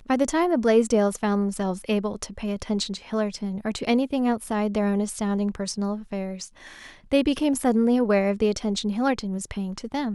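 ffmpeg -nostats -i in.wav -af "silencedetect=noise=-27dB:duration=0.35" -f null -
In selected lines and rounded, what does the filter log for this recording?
silence_start: 6.44
silence_end: 7.12 | silence_duration: 0.68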